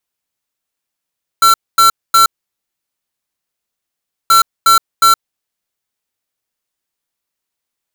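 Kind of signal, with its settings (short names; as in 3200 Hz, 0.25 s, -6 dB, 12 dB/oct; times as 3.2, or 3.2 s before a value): beep pattern square 1350 Hz, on 0.12 s, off 0.24 s, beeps 3, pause 2.04 s, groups 2, -7.5 dBFS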